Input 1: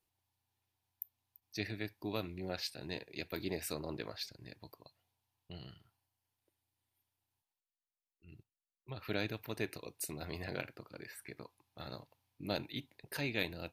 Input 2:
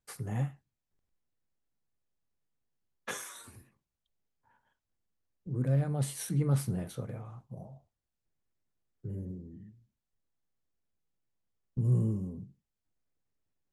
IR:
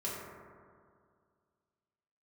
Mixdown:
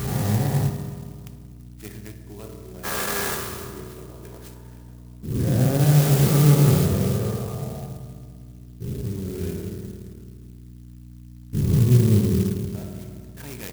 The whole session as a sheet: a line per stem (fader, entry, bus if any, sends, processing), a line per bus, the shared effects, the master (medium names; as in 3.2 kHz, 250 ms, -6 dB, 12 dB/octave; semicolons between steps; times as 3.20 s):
-3.5 dB, 0.25 s, muted 9.63–12.50 s, send -4.5 dB, band-stop 4.4 kHz, Q 5.9; auto duck -16 dB, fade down 0.75 s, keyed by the second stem
+2.0 dB, 0.00 s, send -4 dB, every event in the spectrogram widened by 480 ms; hum 60 Hz, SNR 15 dB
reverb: on, RT60 2.1 s, pre-delay 3 ms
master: band-stop 580 Hz, Q 12; sampling jitter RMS 0.09 ms